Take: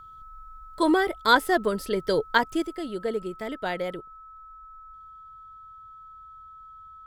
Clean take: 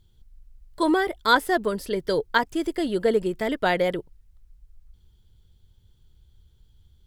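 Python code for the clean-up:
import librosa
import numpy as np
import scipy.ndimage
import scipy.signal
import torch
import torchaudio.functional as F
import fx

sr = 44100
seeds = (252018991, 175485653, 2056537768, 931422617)

y = fx.notch(x, sr, hz=1300.0, q=30.0)
y = fx.gain(y, sr, db=fx.steps((0.0, 0.0), (2.62, 7.5)))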